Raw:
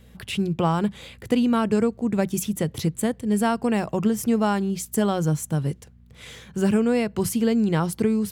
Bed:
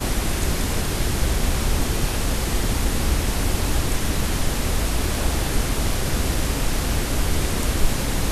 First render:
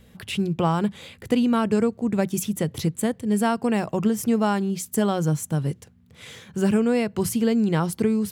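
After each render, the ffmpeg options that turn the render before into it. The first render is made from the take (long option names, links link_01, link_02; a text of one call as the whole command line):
ffmpeg -i in.wav -af "bandreject=frequency=60:width_type=h:width=4,bandreject=frequency=120:width_type=h:width=4" out.wav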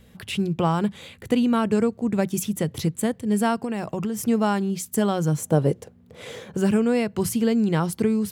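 ffmpeg -i in.wav -filter_complex "[0:a]asettb=1/sr,asplit=3[link_01][link_02][link_03];[link_01]atrim=end=1.004[link_04];[link_02]atrim=start=1:end=1.78,asetpts=PTS-STARTPTS,afade=type=in:duration=0.004:curve=qsin,afade=type=out:start_time=0.776:duration=0.004:curve=qsin,bandreject=frequency=5000:width=12[link_05];[link_03]atrim=start=1.776[link_06];[link_04][link_05]acrossfade=duration=0.004:curve1=hsin:curve2=qsin[link_07];[link_07][link_06]acrossfade=duration=0.004:curve1=qsin:curve2=hsin,asettb=1/sr,asplit=3[link_08][link_09][link_10];[link_08]atrim=end=3.614[link_11];[link_09]atrim=start=3.61:end=4.17,asetpts=PTS-STARTPTS,afade=type=in:duration=0.004:curve=qsin,afade=type=out:start_time=0.556:duration=0.004:curve=qsin,acompressor=threshold=-23dB:ratio=5:attack=3.2:release=140:knee=1:detection=peak[link_12];[link_10]atrim=start=4.166[link_13];[link_11][link_12]acrossfade=duration=0.004:curve1=hsin:curve2=qsin[link_14];[link_14][link_13]acrossfade=duration=0.004:curve1=qsin:curve2=hsin,asettb=1/sr,asplit=3[link_15][link_16][link_17];[link_15]atrim=end=5.384[link_18];[link_16]atrim=start=5.38:end=6.57,asetpts=PTS-STARTPTS,afade=type=in:duration=0.004:curve=qsin,afade=type=out:start_time=1.186:duration=0.004:curve=qsin,equalizer=frequency=520:width=0.83:gain=14[link_19];[link_17]atrim=start=6.566[link_20];[link_18][link_19]acrossfade=duration=0.004:curve1=hsin:curve2=qsin[link_21];[link_21][link_20]acrossfade=duration=0.004:curve1=qsin:curve2=hsin" out.wav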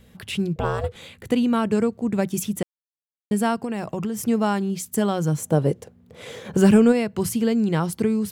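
ffmpeg -i in.wav -filter_complex "[0:a]asettb=1/sr,asplit=3[link_01][link_02][link_03];[link_01]atrim=end=0.564[link_04];[link_02]atrim=start=0.56:end=0.96,asetpts=PTS-STARTPTS,afade=type=in:duration=0.004:curve=qsin,afade=type=out:start_time=0.396:duration=0.004:curve=qsin,aeval=exprs='val(0)*sin(2*PI*290*n/s)':channel_layout=same[link_05];[link_03]atrim=start=0.956[link_06];[link_04][link_05]acrossfade=duration=0.004:curve1=hsin:curve2=qsin[link_07];[link_07][link_06]acrossfade=duration=0.004:curve1=qsin:curve2=hsin,asplit=3[link_08][link_09][link_10];[link_08]afade=type=out:start_time=6.44:duration=0.02[link_11];[link_09]acontrast=69,afade=type=in:start_time=6.44:duration=0.02,afade=type=out:start_time=6.91:duration=0.02[link_12];[link_10]afade=type=in:start_time=6.91:duration=0.02[link_13];[link_11][link_12][link_13]amix=inputs=3:normalize=0,asplit=3[link_14][link_15][link_16];[link_14]atrim=end=2.63,asetpts=PTS-STARTPTS,afade=type=out:start_time=2.626:duration=0.004:curve=hsin[link_17];[link_15]atrim=start=2.63:end=3.31,asetpts=PTS-STARTPTS,volume=0[link_18];[link_16]atrim=start=3.31,asetpts=PTS-STARTPTS,afade=type=in:duration=0.004:curve=hsin[link_19];[link_17][link_18][link_19]concat=n=3:v=0:a=1" out.wav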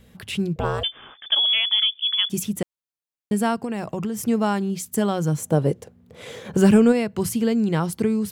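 ffmpeg -i in.wav -filter_complex "[0:a]asettb=1/sr,asplit=3[link_01][link_02][link_03];[link_01]atrim=end=0.834[link_04];[link_02]atrim=start=0.83:end=2.3,asetpts=PTS-STARTPTS,afade=type=in:duration=0.004:curve=qsin,afade=type=out:start_time=1.466:duration=0.004:curve=qsin,lowpass=frequency=3100:width_type=q:width=0.5098,lowpass=frequency=3100:width_type=q:width=0.6013,lowpass=frequency=3100:width_type=q:width=0.9,lowpass=frequency=3100:width_type=q:width=2.563,afreqshift=-3600[link_05];[link_03]atrim=start=2.296[link_06];[link_04][link_05]acrossfade=duration=0.004:curve1=hsin:curve2=qsin[link_07];[link_07][link_06]acrossfade=duration=0.004:curve1=qsin:curve2=hsin" out.wav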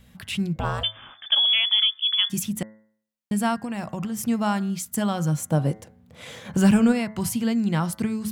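ffmpeg -i in.wav -af "equalizer=frequency=420:width=2.4:gain=-11.5,bandreject=frequency=108.4:width_type=h:width=4,bandreject=frequency=216.8:width_type=h:width=4,bandreject=frequency=325.2:width_type=h:width=4,bandreject=frequency=433.6:width_type=h:width=4,bandreject=frequency=542:width_type=h:width=4,bandreject=frequency=650.4:width_type=h:width=4,bandreject=frequency=758.8:width_type=h:width=4,bandreject=frequency=867.2:width_type=h:width=4,bandreject=frequency=975.6:width_type=h:width=4,bandreject=frequency=1084:width_type=h:width=4,bandreject=frequency=1192.4:width_type=h:width=4,bandreject=frequency=1300.8:width_type=h:width=4,bandreject=frequency=1409.2:width_type=h:width=4,bandreject=frequency=1517.6:width_type=h:width=4,bandreject=frequency=1626:width_type=h:width=4,bandreject=frequency=1734.4:width_type=h:width=4,bandreject=frequency=1842.8:width_type=h:width=4,bandreject=frequency=1951.2:width_type=h:width=4,bandreject=frequency=2059.6:width_type=h:width=4,bandreject=frequency=2168:width_type=h:width=4" out.wav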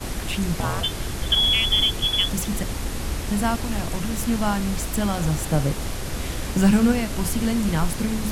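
ffmpeg -i in.wav -i bed.wav -filter_complex "[1:a]volume=-6.5dB[link_01];[0:a][link_01]amix=inputs=2:normalize=0" out.wav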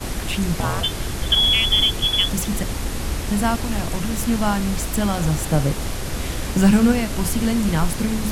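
ffmpeg -i in.wav -af "volume=2.5dB" out.wav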